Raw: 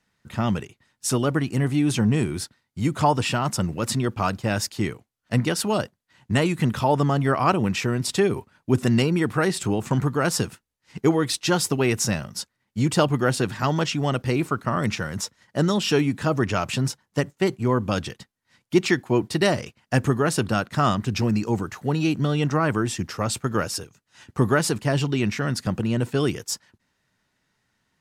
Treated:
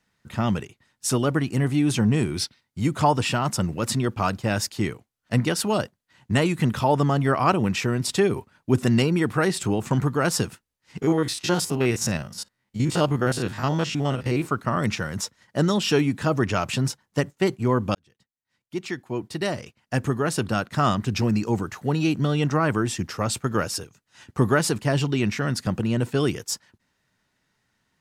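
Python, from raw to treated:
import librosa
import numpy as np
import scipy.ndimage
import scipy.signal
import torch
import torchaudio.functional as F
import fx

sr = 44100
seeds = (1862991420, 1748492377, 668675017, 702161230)

y = fx.spec_box(x, sr, start_s=2.38, length_s=0.23, low_hz=2000.0, high_hz=6100.0, gain_db=8)
y = fx.spec_steps(y, sr, hold_ms=50, at=(11.01, 14.44), fade=0.02)
y = fx.edit(y, sr, fx.fade_in_span(start_s=17.95, length_s=3.06), tone=tone)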